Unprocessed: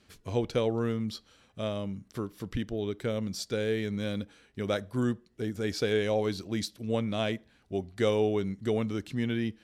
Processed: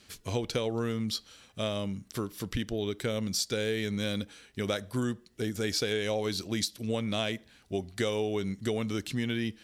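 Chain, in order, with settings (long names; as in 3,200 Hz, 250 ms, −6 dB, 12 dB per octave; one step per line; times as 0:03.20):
high-shelf EQ 2,400 Hz +10 dB
downward compressor, threshold −28 dBFS, peak gain reduction 7.5 dB
level +1.5 dB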